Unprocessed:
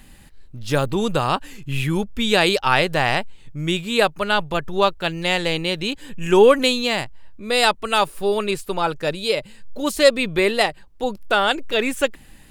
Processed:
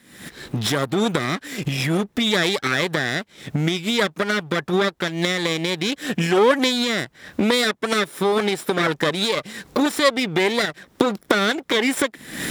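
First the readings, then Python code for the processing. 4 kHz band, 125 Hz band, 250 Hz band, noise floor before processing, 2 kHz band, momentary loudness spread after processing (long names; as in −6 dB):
0.0 dB, +1.0 dB, +2.5 dB, −45 dBFS, 0.0 dB, 7 LU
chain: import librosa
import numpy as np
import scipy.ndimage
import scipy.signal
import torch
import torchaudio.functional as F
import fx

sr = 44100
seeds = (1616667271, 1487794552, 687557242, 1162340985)

y = fx.lower_of_two(x, sr, delay_ms=0.55)
y = fx.recorder_agc(y, sr, target_db=-9.0, rise_db_per_s=77.0, max_gain_db=30)
y = scipy.signal.sosfilt(scipy.signal.butter(2, 210.0, 'highpass', fs=sr, output='sos'), y)
y = fx.high_shelf(y, sr, hz=7000.0, db=-4.5)
y = y * librosa.db_to_amplitude(-1.5)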